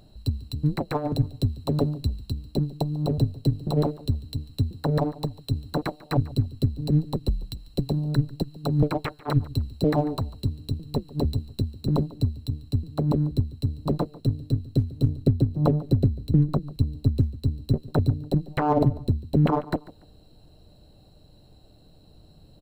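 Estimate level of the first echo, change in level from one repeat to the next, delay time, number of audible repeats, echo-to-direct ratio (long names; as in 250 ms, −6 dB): −19.5 dB, −11.5 dB, 144 ms, 2, −19.0 dB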